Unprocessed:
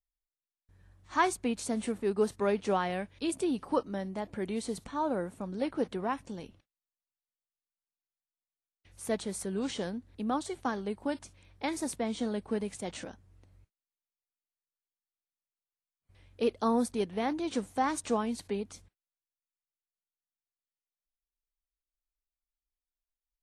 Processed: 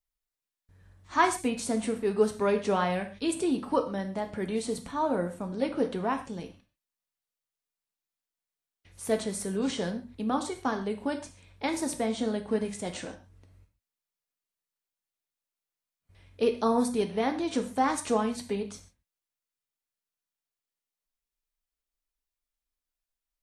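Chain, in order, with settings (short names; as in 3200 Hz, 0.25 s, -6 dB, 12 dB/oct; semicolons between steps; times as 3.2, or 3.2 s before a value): non-linear reverb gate 0.17 s falling, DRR 5.5 dB; gain +2.5 dB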